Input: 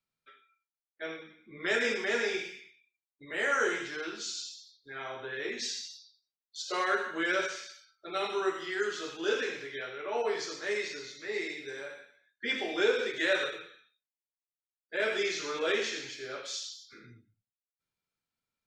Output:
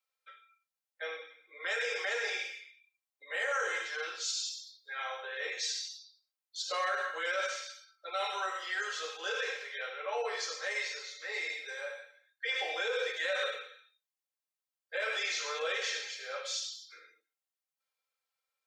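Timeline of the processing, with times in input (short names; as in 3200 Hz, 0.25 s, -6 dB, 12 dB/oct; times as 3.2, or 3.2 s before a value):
4.25–5.22 tilt +1.5 dB/oct
whole clip: comb 3.8 ms, depth 63%; limiter -24 dBFS; steep high-pass 460 Hz 48 dB/oct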